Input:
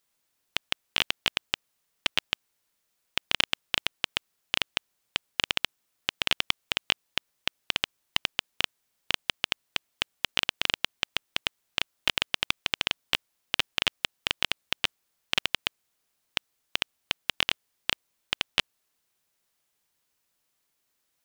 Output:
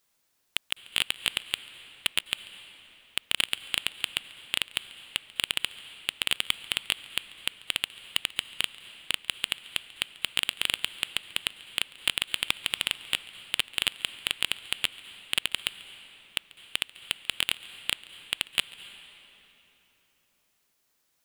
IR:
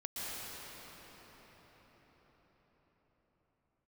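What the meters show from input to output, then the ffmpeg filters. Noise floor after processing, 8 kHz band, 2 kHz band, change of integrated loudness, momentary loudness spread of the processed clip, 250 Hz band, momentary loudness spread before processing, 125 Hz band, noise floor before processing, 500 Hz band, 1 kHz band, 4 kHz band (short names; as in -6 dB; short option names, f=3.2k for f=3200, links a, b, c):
-73 dBFS, +5.0 dB, -1.5 dB, -0.5 dB, 8 LU, -5.0 dB, 8 LU, -5.0 dB, -77 dBFS, -6.5 dB, -5.5 dB, 0.0 dB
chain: -filter_complex "[0:a]aeval=exprs='0.75*sin(PI/2*1.78*val(0)/0.75)':c=same,acrusher=bits=3:mode=log:mix=0:aa=0.000001,asplit=2[a][b];[1:a]atrim=start_sample=2205,asetrate=83790,aresample=44100,adelay=140[c];[b][c]afir=irnorm=-1:irlink=0,volume=-12dB[d];[a][d]amix=inputs=2:normalize=0,volume=-6dB"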